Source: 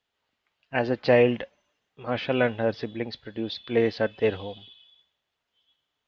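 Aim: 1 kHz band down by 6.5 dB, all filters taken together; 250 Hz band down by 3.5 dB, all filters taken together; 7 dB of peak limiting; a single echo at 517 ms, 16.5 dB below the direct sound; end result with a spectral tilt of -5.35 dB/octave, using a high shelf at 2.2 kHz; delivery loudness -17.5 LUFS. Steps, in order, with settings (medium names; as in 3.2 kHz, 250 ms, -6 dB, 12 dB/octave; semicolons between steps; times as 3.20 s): peaking EQ 250 Hz -3.5 dB; peaking EQ 1 kHz -8.5 dB; treble shelf 2.2 kHz -7.5 dB; peak limiter -18 dBFS; delay 517 ms -16.5 dB; trim +14.5 dB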